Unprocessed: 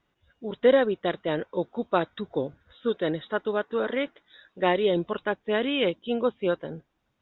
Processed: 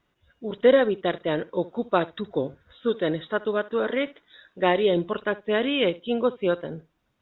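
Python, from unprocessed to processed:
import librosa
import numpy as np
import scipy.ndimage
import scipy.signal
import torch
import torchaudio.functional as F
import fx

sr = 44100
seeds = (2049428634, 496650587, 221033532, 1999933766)

y = fx.notch(x, sr, hz=820.0, q=17.0)
y = fx.room_flutter(y, sr, wall_m=11.8, rt60_s=0.21)
y = y * librosa.db_to_amplitude(2.0)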